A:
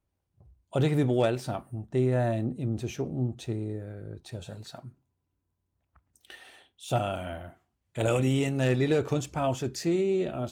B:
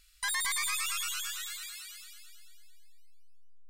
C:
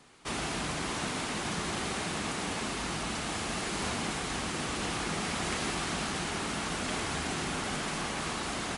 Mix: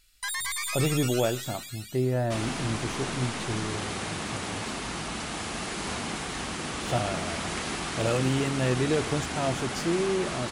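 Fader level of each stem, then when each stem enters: -1.0, 0.0, +0.5 dB; 0.00, 0.00, 2.05 s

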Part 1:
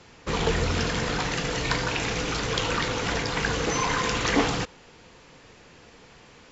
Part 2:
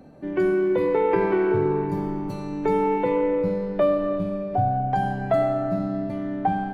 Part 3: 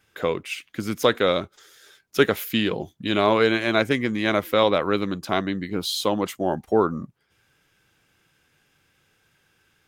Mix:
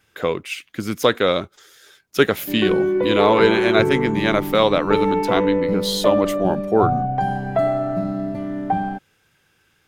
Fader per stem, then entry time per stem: off, +2.0 dB, +2.5 dB; off, 2.25 s, 0.00 s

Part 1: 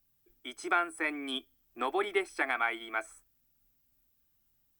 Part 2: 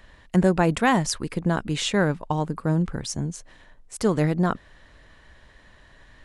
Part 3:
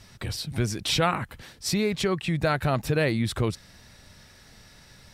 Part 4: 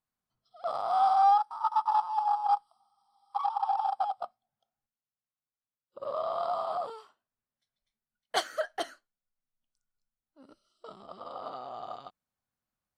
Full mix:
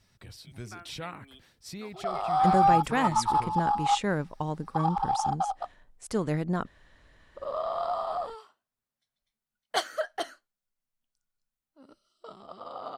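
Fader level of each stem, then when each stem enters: -18.5, -7.0, -15.5, +1.0 dB; 0.00, 2.10, 0.00, 1.40 s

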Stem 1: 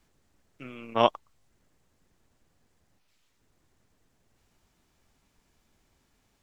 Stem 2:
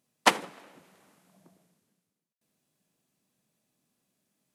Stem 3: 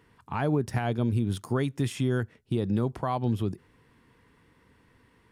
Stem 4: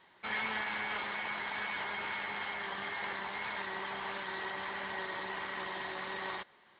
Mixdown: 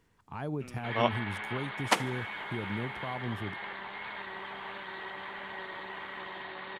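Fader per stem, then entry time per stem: -6.0, -5.0, -9.5, -2.0 dB; 0.00, 1.65, 0.00, 0.60 s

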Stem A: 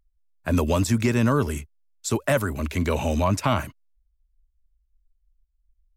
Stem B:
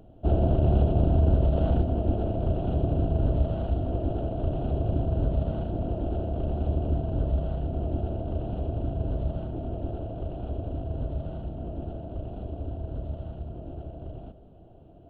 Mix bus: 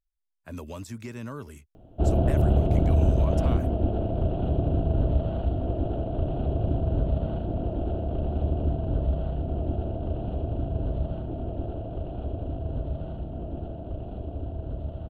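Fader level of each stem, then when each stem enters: -16.5, +0.5 dB; 0.00, 1.75 s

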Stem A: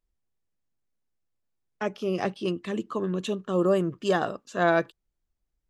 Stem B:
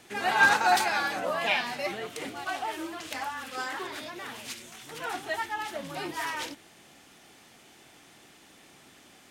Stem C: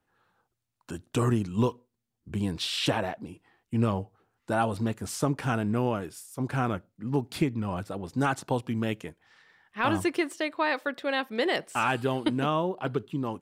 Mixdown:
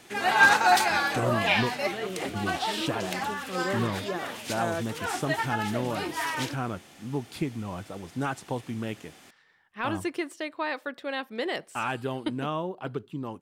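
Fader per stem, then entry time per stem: -9.5, +2.5, -4.0 dB; 0.00, 0.00, 0.00 s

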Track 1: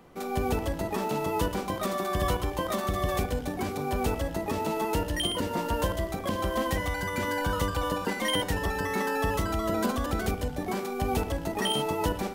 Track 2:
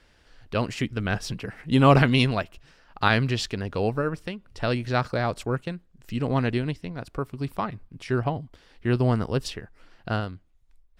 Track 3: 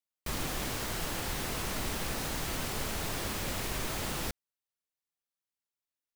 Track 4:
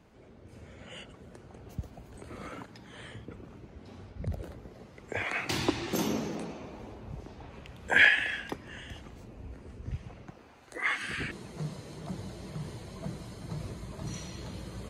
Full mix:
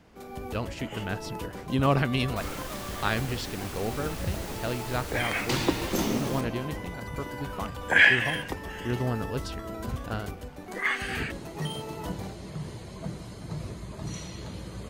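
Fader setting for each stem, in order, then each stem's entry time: -10.0, -7.0, -4.5, +2.5 dB; 0.00, 0.00, 2.10, 0.00 s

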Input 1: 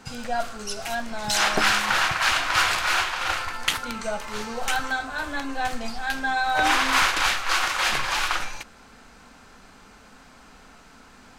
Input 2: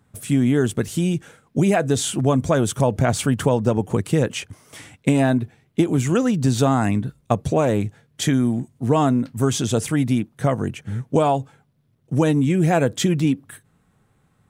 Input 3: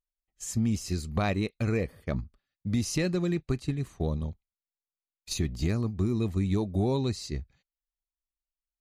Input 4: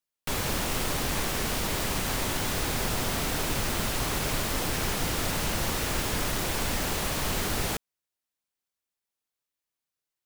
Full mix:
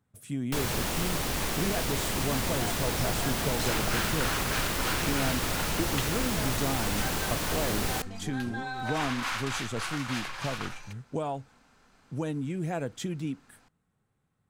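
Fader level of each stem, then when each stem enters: -12.5, -14.5, -17.0, -1.5 dB; 2.30, 0.00, 1.70, 0.25 s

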